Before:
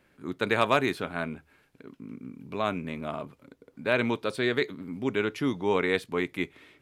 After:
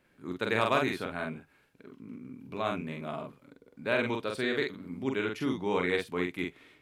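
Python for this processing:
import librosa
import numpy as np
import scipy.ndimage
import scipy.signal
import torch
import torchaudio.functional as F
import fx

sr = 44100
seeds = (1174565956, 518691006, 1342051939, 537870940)

y = fx.doubler(x, sr, ms=45.0, db=-3)
y = y * librosa.db_to_amplitude(-4.5)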